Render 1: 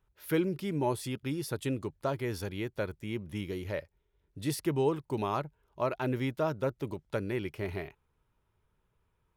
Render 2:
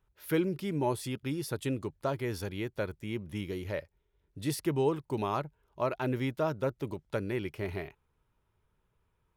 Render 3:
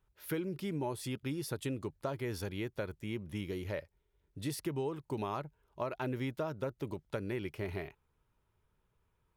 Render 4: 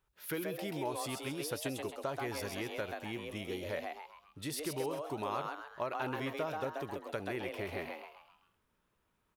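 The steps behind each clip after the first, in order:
no audible change
compression, threshold -31 dBFS, peak gain reduction 8.5 dB; trim -1.5 dB
bass shelf 350 Hz -9 dB; on a send: frequency-shifting echo 132 ms, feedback 43%, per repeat +150 Hz, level -4 dB; on the sum: trim +2 dB

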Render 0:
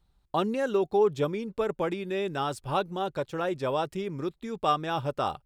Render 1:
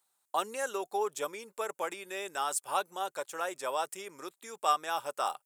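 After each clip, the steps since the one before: high-pass 760 Hz 12 dB/octave; resonant high shelf 5.8 kHz +11.5 dB, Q 1.5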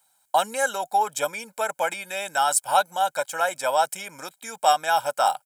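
comb 1.3 ms, depth 84%; trim +8.5 dB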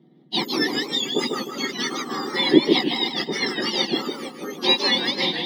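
spectrum inverted on a logarithmic axis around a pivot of 1.7 kHz; modulated delay 153 ms, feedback 41%, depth 182 cents, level -5 dB; trim +2 dB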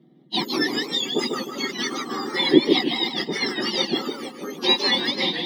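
coarse spectral quantiser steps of 15 dB

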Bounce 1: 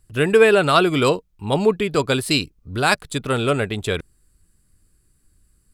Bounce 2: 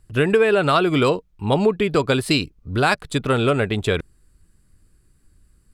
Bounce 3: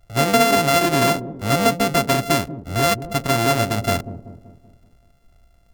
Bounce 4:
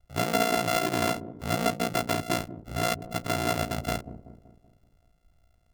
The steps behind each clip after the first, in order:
treble shelf 5.4 kHz -9 dB; compression 4:1, threshold -18 dBFS, peak gain reduction 9 dB; trim +4 dB
sorted samples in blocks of 64 samples; feedback echo behind a low-pass 191 ms, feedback 48%, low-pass 450 Hz, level -9 dB
ring modulator 29 Hz; trim -6.5 dB

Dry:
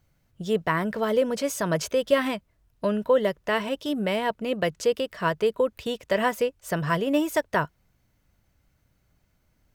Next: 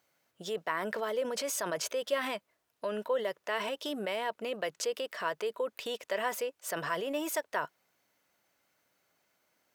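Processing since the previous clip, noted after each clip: high-pass 450 Hz 12 dB/octave; in parallel at -0.5 dB: compressor with a negative ratio -35 dBFS, ratio -1; on the sum: trim -9 dB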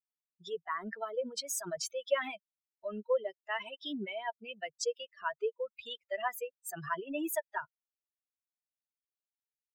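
expander on every frequency bin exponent 3; trim +4 dB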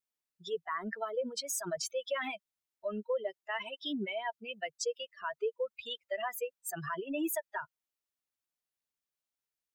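peak limiter -28 dBFS, peak gain reduction 10 dB; trim +2.5 dB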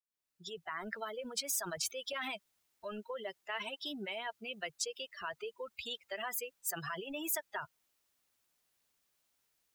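fade-in on the opening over 0.97 s; spectrum-flattening compressor 2:1; trim +4.5 dB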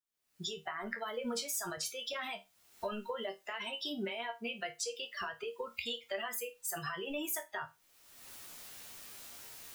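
recorder AGC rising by 41 dB/s; chord resonator D#2 major, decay 0.23 s; trim +8 dB

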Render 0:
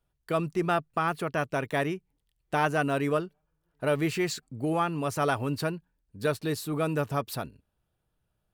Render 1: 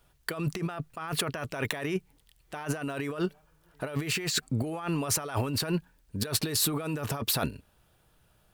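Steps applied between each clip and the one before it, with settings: tilt shelf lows -3 dB, about 650 Hz; compressor with a negative ratio -38 dBFS, ratio -1; trim +6 dB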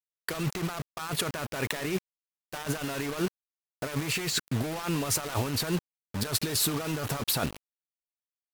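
bit crusher 6-bit; AAC 96 kbps 48 kHz

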